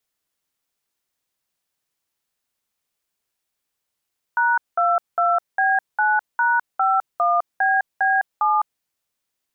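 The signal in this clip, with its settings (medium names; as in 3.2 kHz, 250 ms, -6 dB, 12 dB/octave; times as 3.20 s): DTMF "#22B9#51BB7", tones 207 ms, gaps 197 ms, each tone -18 dBFS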